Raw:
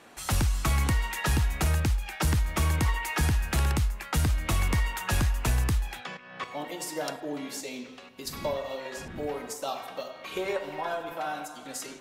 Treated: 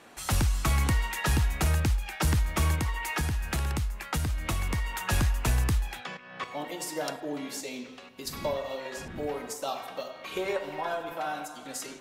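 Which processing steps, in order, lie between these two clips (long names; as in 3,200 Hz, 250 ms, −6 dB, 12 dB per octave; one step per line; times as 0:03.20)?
0:02.74–0:04.94: downward compressor, threshold −26 dBFS, peak gain reduction 5 dB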